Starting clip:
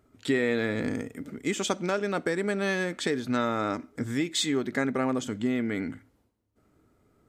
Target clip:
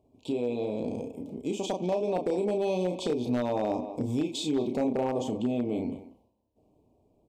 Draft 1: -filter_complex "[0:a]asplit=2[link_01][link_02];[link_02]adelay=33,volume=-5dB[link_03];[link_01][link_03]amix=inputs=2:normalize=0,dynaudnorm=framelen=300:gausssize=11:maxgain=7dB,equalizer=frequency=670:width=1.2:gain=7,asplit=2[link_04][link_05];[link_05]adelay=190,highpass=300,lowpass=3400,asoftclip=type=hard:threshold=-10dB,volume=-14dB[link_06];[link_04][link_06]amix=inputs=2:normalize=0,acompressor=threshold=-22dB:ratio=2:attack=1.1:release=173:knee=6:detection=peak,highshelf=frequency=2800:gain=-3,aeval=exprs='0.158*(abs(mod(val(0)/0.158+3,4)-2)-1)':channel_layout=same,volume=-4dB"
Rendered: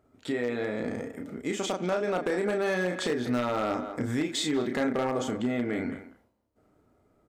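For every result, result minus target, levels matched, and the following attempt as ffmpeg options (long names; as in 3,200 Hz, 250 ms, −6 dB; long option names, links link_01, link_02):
2,000 Hz band +12.5 dB; 4,000 Hz band +3.5 dB
-filter_complex "[0:a]asplit=2[link_01][link_02];[link_02]adelay=33,volume=-5dB[link_03];[link_01][link_03]amix=inputs=2:normalize=0,dynaudnorm=framelen=300:gausssize=11:maxgain=7dB,asuperstop=centerf=1600:order=12:qfactor=1.2,equalizer=frequency=670:width=1.2:gain=7,asplit=2[link_04][link_05];[link_05]adelay=190,highpass=300,lowpass=3400,asoftclip=type=hard:threshold=-10dB,volume=-14dB[link_06];[link_04][link_06]amix=inputs=2:normalize=0,acompressor=threshold=-22dB:ratio=2:attack=1.1:release=173:knee=6:detection=peak,highshelf=frequency=2800:gain=-3,aeval=exprs='0.158*(abs(mod(val(0)/0.158+3,4)-2)-1)':channel_layout=same,volume=-4dB"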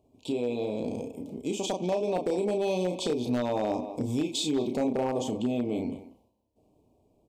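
4,000 Hz band +3.5 dB
-filter_complex "[0:a]asplit=2[link_01][link_02];[link_02]adelay=33,volume=-5dB[link_03];[link_01][link_03]amix=inputs=2:normalize=0,dynaudnorm=framelen=300:gausssize=11:maxgain=7dB,asuperstop=centerf=1600:order=12:qfactor=1.2,equalizer=frequency=670:width=1.2:gain=7,asplit=2[link_04][link_05];[link_05]adelay=190,highpass=300,lowpass=3400,asoftclip=type=hard:threshold=-10dB,volume=-14dB[link_06];[link_04][link_06]amix=inputs=2:normalize=0,acompressor=threshold=-22dB:ratio=2:attack=1.1:release=173:knee=6:detection=peak,highshelf=frequency=2800:gain=-9,aeval=exprs='0.158*(abs(mod(val(0)/0.158+3,4)-2)-1)':channel_layout=same,volume=-4dB"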